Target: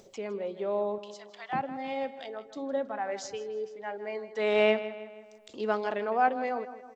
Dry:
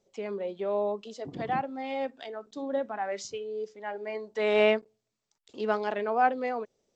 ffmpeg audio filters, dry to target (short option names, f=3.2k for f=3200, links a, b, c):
-filter_complex "[0:a]asettb=1/sr,asplit=3[a][b][c];[a]atrim=end=0.984[d];[b]atrim=start=0.98:end=1.53,asetpts=PTS-STARTPTS,afade=t=in:d=0.004:c=qsin,afade=t=out:st=0.546:d=0.004:c=qsin,highpass=f=980:w=0.5412,highpass=f=980:w=1.3066[e];[c]atrim=start=1.526[f];[d][e]acrossfade=d=0.004:c1=hsin:c2=qsin[g];[g][f]acrossfade=d=0.004:c1=qsin:c2=hsin,acompressor=mode=upward:threshold=-42dB:ratio=2.5,asplit=2[h][i];[i]adelay=160,lowpass=f=4.2k:p=1,volume=-13dB,asplit=2[j][k];[k]adelay=160,lowpass=f=4.2k:p=1,volume=0.51,asplit=2[l][m];[m]adelay=160,lowpass=f=4.2k:p=1,volume=0.51,asplit=2[n][o];[o]adelay=160,lowpass=f=4.2k:p=1,volume=0.51,asplit=2[p][q];[q]adelay=160,lowpass=f=4.2k:p=1,volume=0.51[r];[h][j][l][n][p][r]amix=inputs=6:normalize=0,volume=-1dB"